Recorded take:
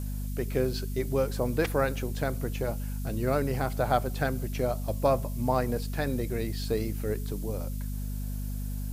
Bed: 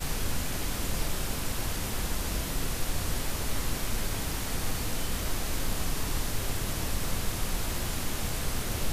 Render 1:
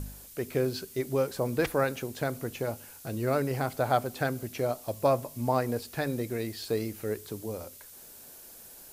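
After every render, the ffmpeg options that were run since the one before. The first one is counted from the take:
-af "bandreject=f=50:t=h:w=4,bandreject=f=100:t=h:w=4,bandreject=f=150:t=h:w=4,bandreject=f=200:t=h:w=4,bandreject=f=250:t=h:w=4"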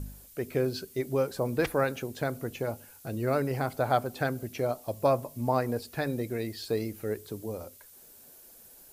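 -af "afftdn=nr=6:nf=-50"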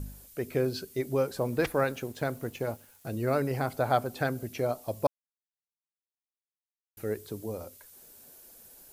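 -filter_complex "[0:a]asettb=1/sr,asplit=3[a][b][c];[a]atrim=end=1.394[d];[b]atrim=start=1.39:end=3.06,asetpts=PTS-STARTPTS,afade=t=in:d=0.004:c=qsin,afade=t=out:st=1.666:d=0.004:c=qsin,aeval=exprs='sgn(val(0))*max(abs(val(0))-0.00168,0)':c=same[e];[c]atrim=start=3.056[f];[d][e]acrossfade=d=0.004:c1=hsin:c2=qsin[g];[g][f]acrossfade=d=0.004:c1=qsin:c2=hsin,asplit=3[h][i][j];[h]atrim=end=5.07,asetpts=PTS-STARTPTS,afade=t=out:st=5.066:d=0.004:c=hsin[k];[i]atrim=start=5.07:end=6.97,asetpts=PTS-STARTPTS,volume=0[l];[j]atrim=start=6.97,asetpts=PTS-STARTPTS,afade=t=in:d=0.004:c=hsin[m];[k][l][m]concat=n=3:v=0:a=1"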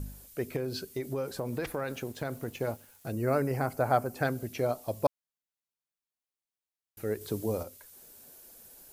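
-filter_complex "[0:a]asettb=1/sr,asplit=3[a][b][c];[a]atrim=end=0.564[d];[b]atrim=start=0.56:end=2.48,asetpts=PTS-STARTPTS,afade=t=in:d=0.004:c=qsin,afade=t=out:st=1.916:d=0.004:c=qsin,acompressor=threshold=-29dB:ratio=5:attack=3.2:release=140:knee=1:detection=peak[e];[c]atrim=start=2.476[f];[d][e]acrossfade=d=0.004:c1=hsin:c2=qsin[g];[g][f]acrossfade=d=0.004:c1=qsin:c2=hsin,asettb=1/sr,asplit=3[h][i][j];[h]atrim=end=3.124[k];[i]atrim=start=3.12:end=4.23,asetpts=PTS-STARTPTS,afade=t=in:d=0.004:c=qsin,afade=t=out:st=1.106:d=0.004:c=qsin,equalizer=f=3.6k:w=2.7:g=-12.5[l];[j]atrim=start=4.226[m];[k][l]acrossfade=d=0.004:c1=hsin:c2=qsin[n];[n][m]acrossfade=d=0.004:c1=qsin:c2=hsin,asplit=3[o][p][q];[o]atrim=end=7.212[r];[p]atrim=start=7.208:end=7.632,asetpts=PTS-STARTPTS,volume=5dB[s];[q]atrim=start=7.628[t];[r][s]acrossfade=d=0.004:c1=hsin:c2=hsin[u];[u][t]acrossfade=d=0.004:c1=hsin:c2=hsin"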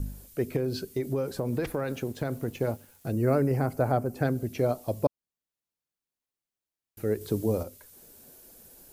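-filter_complex "[0:a]acrossover=split=500[a][b];[a]acontrast=51[c];[b]alimiter=limit=-22dB:level=0:latency=1:release=461[d];[c][d]amix=inputs=2:normalize=0"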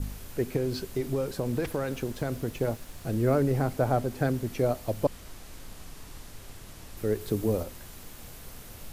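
-filter_complex "[1:a]volume=-14.5dB[a];[0:a][a]amix=inputs=2:normalize=0"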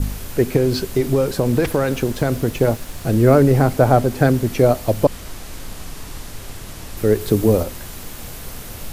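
-af "volume=12dB,alimiter=limit=-1dB:level=0:latency=1"

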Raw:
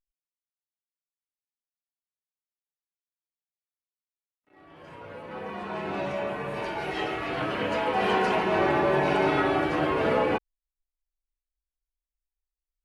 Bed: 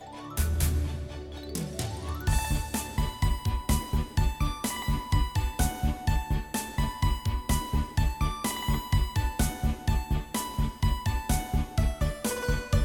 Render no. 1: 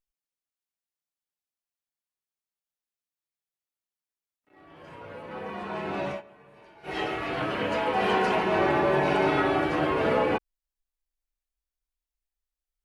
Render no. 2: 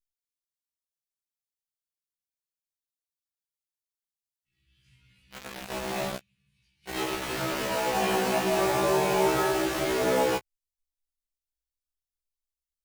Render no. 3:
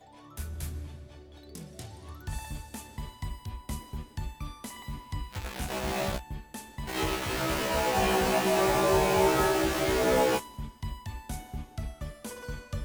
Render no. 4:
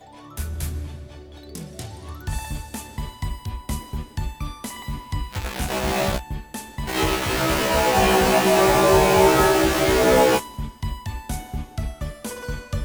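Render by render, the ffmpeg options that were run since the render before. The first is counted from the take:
-filter_complex "[0:a]asplit=3[a][b][c];[a]atrim=end=6.22,asetpts=PTS-STARTPTS,afade=t=out:st=6.07:d=0.15:c=qsin:silence=0.0891251[d];[b]atrim=start=6.22:end=6.83,asetpts=PTS-STARTPTS,volume=-21dB[e];[c]atrim=start=6.83,asetpts=PTS-STARTPTS,afade=t=in:d=0.15:c=qsin:silence=0.0891251[f];[d][e][f]concat=n=3:v=0:a=1"
-filter_complex "[0:a]acrossover=split=130|3000[a][b][c];[b]acrusher=bits=4:mix=0:aa=0.000001[d];[a][d][c]amix=inputs=3:normalize=0,afftfilt=real='re*1.73*eq(mod(b,3),0)':imag='im*1.73*eq(mod(b,3),0)':win_size=2048:overlap=0.75"
-filter_complex "[1:a]volume=-10.5dB[a];[0:a][a]amix=inputs=2:normalize=0"
-af "volume=8.5dB"

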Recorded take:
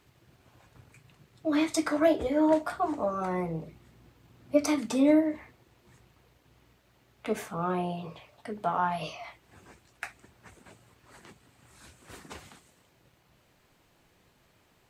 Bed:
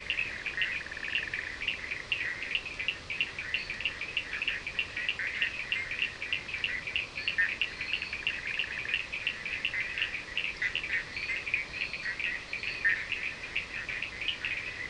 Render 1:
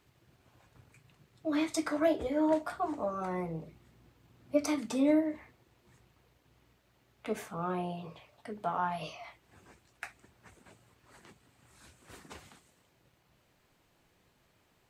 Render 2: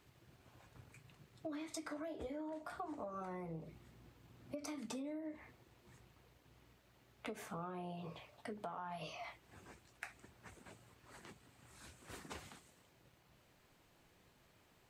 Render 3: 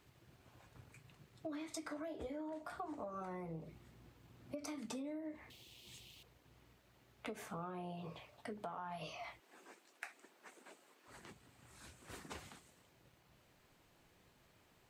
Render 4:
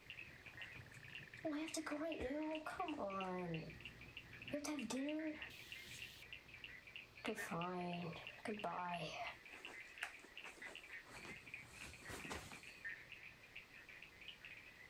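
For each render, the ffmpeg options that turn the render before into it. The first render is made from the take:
-af "volume=-4.5dB"
-af "alimiter=level_in=2.5dB:limit=-24dB:level=0:latency=1:release=101,volume=-2.5dB,acompressor=threshold=-42dB:ratio=10"
-filter_complex "[0:a]asettb=1/sr,asplit=3[a][b][c];[a]atrim=end=5.504[d];[b]atrim=start=5.5:end=6.23,asetpts=PTS-STARTPTS,afade=t=in:d=0.004:c=qsin,afade=t=out:st=0.726:d=0.004:c=qsin,highshelf=f=2.2k:t=q:w=3:g=12[e];[c]atrim=start=6.226[f];[d][e]acrossfade=d=0.004:c1=hsin:c2=qsin[g];[g][f]acrossfade=d=0.004:c1=qsin:c2=hsin,asettb=1/sr,asplit=3[h][i][j];[h]atrim=end=9.404[k];[i]atrim=start=9.4:end=11.08,asetpts=PTS-STARTPTS,afade=t=in:d=0.004:c=qsin,afade=t=out:st=1.676:d=0.004:c=qsin,highpass=f=270:w=0.5412,highpass=f=270:w=1.3066[l];[j]atrim=start=11.076[m];[k][l]acrossfade=d=0.004:c1=hsin:c2=qsin[n];[n][m]acrossfade=d=0.004:c1=qsin:c2=hsin"
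-filter_complex "[1:a]volume=-23dB[a];[0:a][a]amix=inputs=2:normalize=0"

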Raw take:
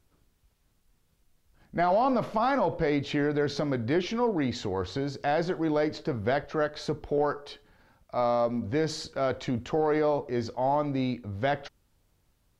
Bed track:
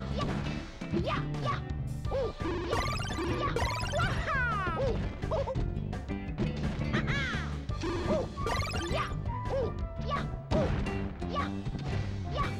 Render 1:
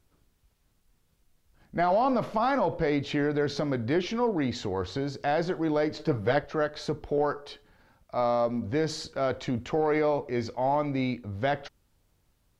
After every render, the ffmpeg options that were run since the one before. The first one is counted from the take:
-filter_complex "[0:a]asettb=1/sr,asplit=3[a][b][c];[a]atrim=end=5.994[d];[b]atrim=start=5.99:end=6.39,asetpts=PTS-STARTPTS,afade=t=in:d=0.004:c=qsin,afade=t=out:st=0.396:d=0.004:c=qsin,aecho=1:1:6.6:0.8,atrim=end_sample=17640[e];[c]atrim=start=6.386[f];[d][e]acrossfade=d=0.004:c1=hsin:c2=qsin[g];[g][f]acrossfade=d=0.004:c1=qsin:c2=hsin,asettb=1/sr,asplit=3[h][i][j];[h]atrim=end=9.664[k];[i]atrim=start=9.66:end=11.15,asetpts=PTS-STARTPTS,afade=t=in:d=0.004:c=qsin,afade=t=out:st=1.486:d=0.004:c=qsin,equalizer=f=2.2k:t=o:w=0.25:g=8[l];[j]atrim=start=11.146[m];[k][l]acrossfade=d=0.004:c1=hsin:c2=qsin[n];[n][m]acrossfade=d=0.004:c1=qsin:c2=hsin"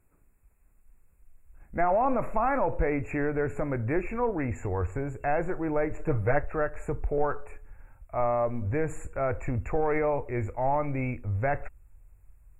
-af "afftfilt=real='re*(1-between(b*sr/4096,2700,6800))':imag='im*(1-between(b*sr/4096,2700,6800))':win_size=4096:overlap=0.75,asubboost=boost=12:cutoff=59"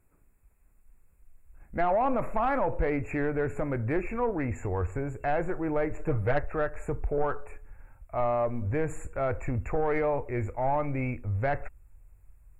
-af "asoftclip=type=tanh:threshold=-16dB"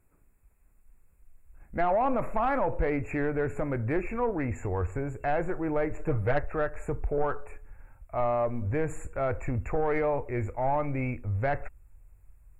-af anull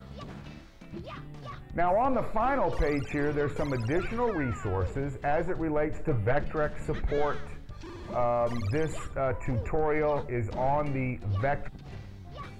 -filter_complex "[1:a]volume=-10dB[a];[0:a][a]amix=inputs=2:normalize=0"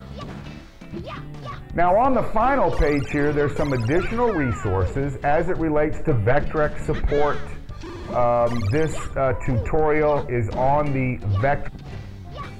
-af "volume=8dB"

